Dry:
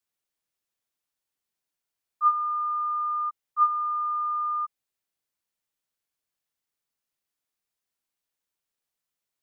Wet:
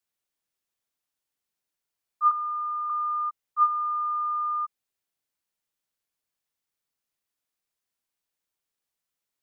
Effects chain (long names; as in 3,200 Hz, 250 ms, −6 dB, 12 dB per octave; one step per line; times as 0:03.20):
0:02.31–0:02.90: high-pass filter 1,100 Hz 12 dB per octave